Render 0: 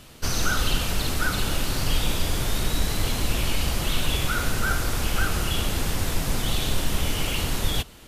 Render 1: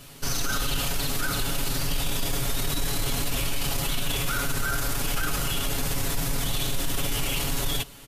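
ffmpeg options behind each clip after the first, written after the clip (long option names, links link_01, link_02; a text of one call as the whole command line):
ffmpeg -i in.wav -af "highshelf=frequency=8400:gain=7,aecho=1:1:7.2:0.88,alimiter=limit=-15.5dB:level=0:latency=1:release=14,volume=-2dB" out.wav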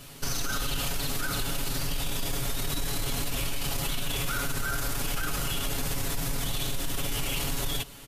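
ffmpeg -i in.wav -af "acompressor=threshold=-25dB:ratio=6" out.wav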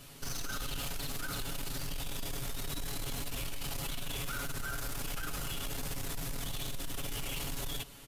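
ffmpeg -i in.wav -af "asoftclip=type=tanh:threshold=-25dB,volume=-5.5dB" out.wav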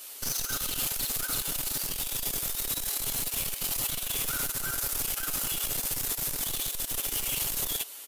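ffmpeg -i in.wav -filter_complex "[0:a]acrossover=split=350|5700[link_01][link_02][link_03];[link_01]acrusher=bits=4:dc=4:mix=0:aa=0.000001[link_04];[link_04][link_02][link_03]amix=inputs=3:normalize=0,crystalizer=i=2.5:c=0,volume=1dB" out.wav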